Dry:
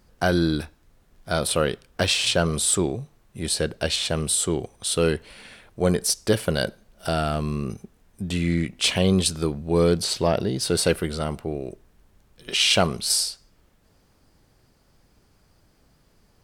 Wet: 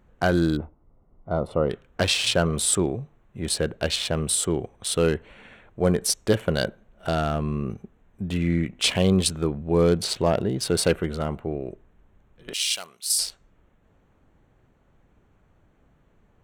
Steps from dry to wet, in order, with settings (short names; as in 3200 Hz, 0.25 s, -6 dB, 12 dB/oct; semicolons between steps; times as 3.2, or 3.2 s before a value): Wiener smoothing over 9 samples; 0.57–1.7 polynomial smoothing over 65 samples; 12.53–13.19 differentiator